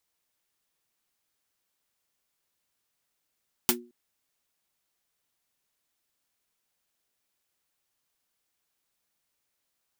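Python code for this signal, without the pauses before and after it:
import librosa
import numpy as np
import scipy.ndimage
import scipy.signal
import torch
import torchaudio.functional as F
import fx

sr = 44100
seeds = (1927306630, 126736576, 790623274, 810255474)

y = fx.drum_snare(sr, seeds[0], length_s=0.22, hz=240.0, second_hz=360.0, noise_db=10.5, noise_from_hz=510.0, decay_s=0.36, noise_decay_s=0.1)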